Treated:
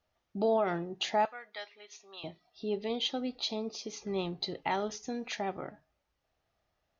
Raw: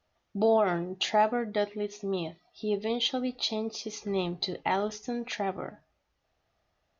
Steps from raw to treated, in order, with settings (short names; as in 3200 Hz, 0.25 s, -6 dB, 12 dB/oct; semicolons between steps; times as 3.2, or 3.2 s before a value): 1.25–2.24 HPF 1300 Hz 12 dB/oct; 4.62–5.61 high shelf 4500 Hz +5 dB; gain -4 dB